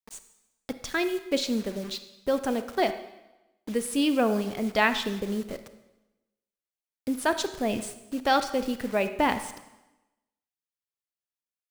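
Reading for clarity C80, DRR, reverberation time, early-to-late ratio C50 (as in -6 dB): 13.5 dB, 10.0 dB, 1.0 s, 11.0 dB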